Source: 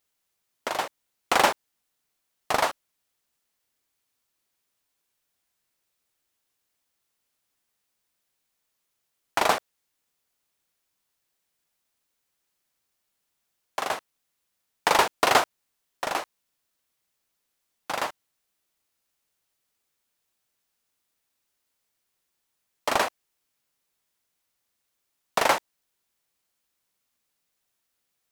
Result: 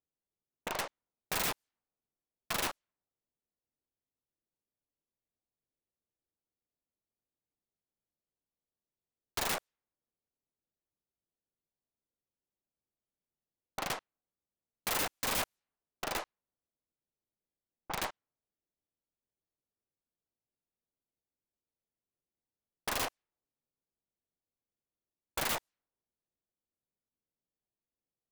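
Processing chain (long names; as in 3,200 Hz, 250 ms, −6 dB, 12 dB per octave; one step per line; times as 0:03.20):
stylus tracing distortion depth 0.49 ms
low-pass that shuts in the quiet parts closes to 500 Hz, open at −22.5 dBFS
wrap-around overflow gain 20 dB
level −6.5 dB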